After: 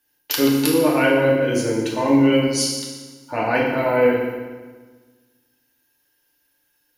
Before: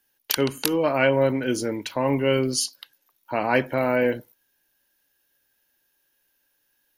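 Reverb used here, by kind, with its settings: FDN reverb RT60 1.4 s, low-frequency decay 1.25×, high-frequency decay 0.85×, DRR -4 dB; trim -2 dB

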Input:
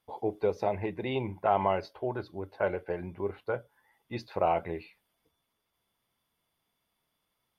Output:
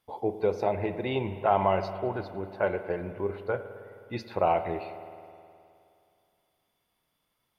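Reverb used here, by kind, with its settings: spring tank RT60 2.5 s, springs 52 ms, chirp 55 ms, DRR 10 dB; trim +2 dB

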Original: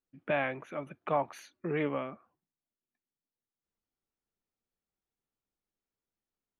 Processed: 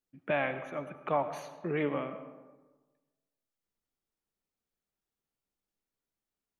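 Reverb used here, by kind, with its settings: algorithmic reverb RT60 1.3 s, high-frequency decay 0.45×, pre-delay 55 ms, DRR 10.5 dB

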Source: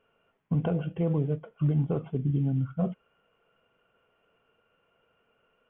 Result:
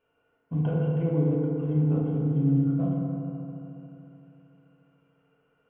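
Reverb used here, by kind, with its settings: FDN reverb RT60 3.2 s, high-frequency decay 0.3×, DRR -5.5 dB; trim -7.5 dB

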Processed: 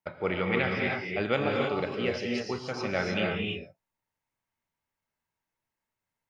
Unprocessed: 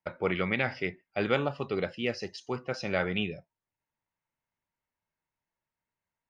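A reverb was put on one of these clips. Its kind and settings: gated-style reverb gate 340 ms rising, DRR -0.5 dB; trim -1 dB

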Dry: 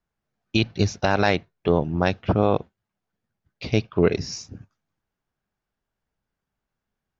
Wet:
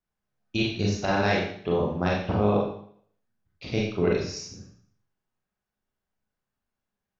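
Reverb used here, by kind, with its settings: Schroeder reverb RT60 0.59 s, combs from 30 ms, DRR -3.5 dB; trim -8 dB

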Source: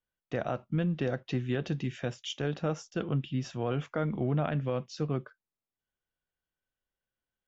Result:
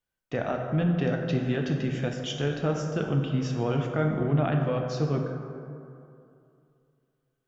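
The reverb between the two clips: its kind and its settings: plate-style reverb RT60 2.6 s, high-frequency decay 0.4×, DRR 2 dB; trim +2.5 dB

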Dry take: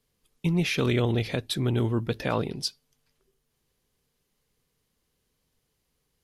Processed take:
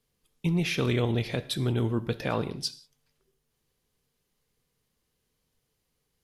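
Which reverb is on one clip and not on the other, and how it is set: gated-style reverb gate 210 ms falling, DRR 12 dB; trim -2 dB

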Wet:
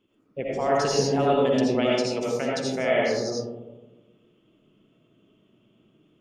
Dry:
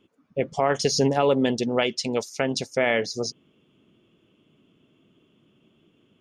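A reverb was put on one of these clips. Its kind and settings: algorithmic reverb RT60 1.2 s, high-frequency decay 0.25×, pre-delay 40 ms, DRR -5 dB; trim -7 dB

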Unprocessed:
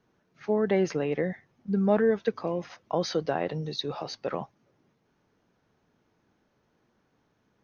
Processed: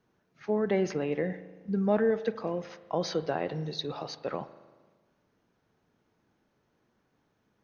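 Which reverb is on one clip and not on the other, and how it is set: spring tank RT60 1.4 s, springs 38 ms, chirp 20 ms, DRR 13 dB; trim -2.5 dB

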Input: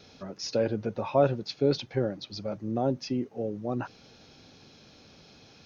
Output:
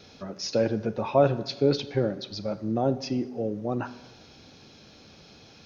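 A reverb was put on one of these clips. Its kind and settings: plate-style reverb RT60 1.1 s, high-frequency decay 0.75×, DRR 12 dB; trim +2.5 dB

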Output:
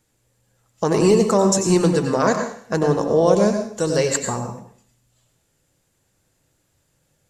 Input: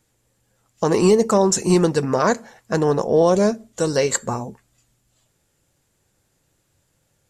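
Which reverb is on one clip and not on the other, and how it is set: plate-style reverb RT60 0.51 s, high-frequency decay 1×, pre-delay 80 ms, DRR 5.5 dB; trim -1 dB

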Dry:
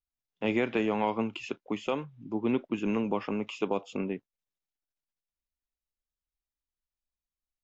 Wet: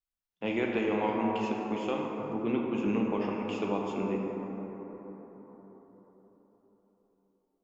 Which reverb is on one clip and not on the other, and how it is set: plate-style reverb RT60 4.8 s, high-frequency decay 0.3×, DRR -1.5 dB; trim -4 dB

